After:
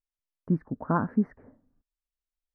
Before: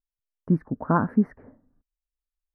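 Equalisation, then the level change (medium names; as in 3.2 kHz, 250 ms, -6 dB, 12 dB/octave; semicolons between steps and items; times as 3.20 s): distance through air 55 m; -4.0 dB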